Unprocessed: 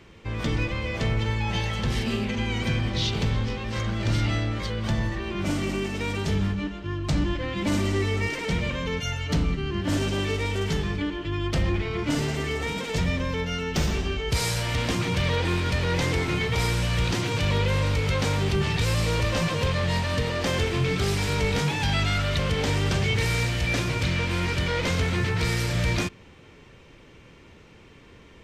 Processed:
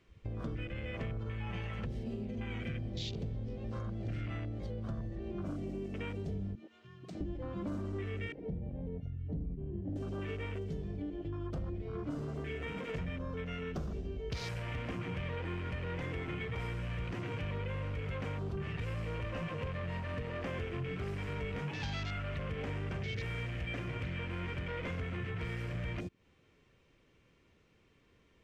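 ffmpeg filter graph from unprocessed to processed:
ffmpeg -i in.wav -filter_complex "[0:a]asettb=1/sr,asplit=3[link_01][link_02][link_03];[link_01]atrim=end=6.554[link_04];[link_02]atrim=start=6.55:end=7.21,asetpts=PTS-STARTPTS,afade=type=in:duration=0.004:curve=qsin,afade=type=out:start_time=0.656:duration=0.004:curve=qsin,highpass=frequency=650:poles=1,acompressor=threshold=-40dB:ratio=2:attack=3.2:release=140:knee=1:detection=peak,afreqshift=28[link_05];[link_03]atrim=start=7.206[link_06];[link_04][link_05]acrossfade=duration=0.004:curve1=hsin:curve2=qsin[link_07];[link_07][link_06]acrossfade=duration=0.004:curve1=qsin:curve2=hsin,asettb=1/sr,asplit=3[link_08][link_09][link_10];[link_08]atrim=end=8.324[link_11];[link_09]atrim=start=8.32:end=9.96,asetpts=PTS-STARTPTS,afade=type=in:duration=0.004:curve=qsin,afade=type=out:start_time=1.636:duration=0.004:curve=qsin,lowpass=1400,equalizer=frequency=1100:width=0.68:gain=-11.5[link_12];[link_10]atrim=start=9.956[link_13];[link_11][link_12]acrossfade=duration=0.004:curve1=hsin:curve2=qsin[link_14];[link_14][link_13]acrossfade=duration=0.004:curve1=qsin:curve2=hsin,afwtdn=0.0282,bandreject=frequency=880:width=12,acompressor=threshold=-37dB:ratio=4,volume=-1dB" out.wav

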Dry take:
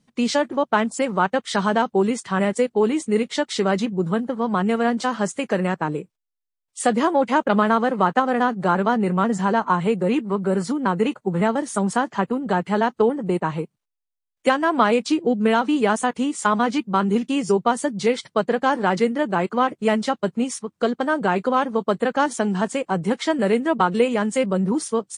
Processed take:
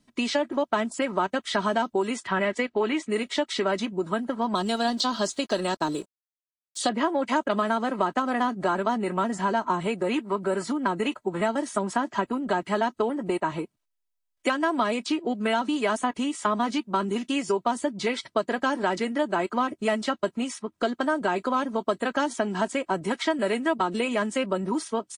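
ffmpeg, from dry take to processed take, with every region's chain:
ffmpeg -i in.wav -filter_complex "[0:a]asettb=1/sr,asplit=3[link_01][link_02][link_03];[link_01]atrim=end=2.274[link_04];[link_02]atrim=start=2.27:end=3.1,asetpts=PTS-STARTPTS,afade=type=in:duration=0.004:curve=qsin,afade=type=out:start_time=0.826:duration=0.004:curve=qsin,lowpass=4600,equalizer=frequency=2000:width_type=o:width=1.3:gain=5[link_05];[link_03]atrim=start=3.096[link_06];[link_04][link_05]acrossfade=duration=0.004:curve1=hsin:curve2=qsin[link_07];[link_07][link_06]acrossfade=duration=0.004:curve1=qsin:curve2=hsin,asettb=1/sr,asplit=3[link_08][link_09][link_10];[link_08]atrim=end=4.554[link_11];[link_09]atrim=start=4.55:end=6.89,asetpts=PTS-STARTPTS,afade=type=in:duration=0.004:curve=qsin,afade=type=out:start_time=2.336:duration=0.004:curve=qsin,highshelf=frequency=3000:width_type=q:width=3:gain=10.5,aeval=exprs='sgn(val(0))*max(abs(val(0))-0.00376,0)':channel_layout=same[link_12];[link_10]atrim=start=6.886[link_13];[link_11][link_12]acrossfade=duration=0.004:curve1=hsin:curve2=qsin[link_14];[link_14][link_13]acrossfade=duration=0.004:curve1=qsin:curve2=hsin,aecho=1:1:3.1:0.54,acrossover=split=580|4000[link_15][link_16][link_17];[link_15]acompressor=threshold=-28dB:ratio=4[link_18];[link_16]acompressor=threshold=-25dB:ratio=4[link_19];[link_17]acompressor=threshold=-41dB:ratio=4[link_20];[link_18][link_19][link_20]amix=inputs=3:normalize=0" out.wav

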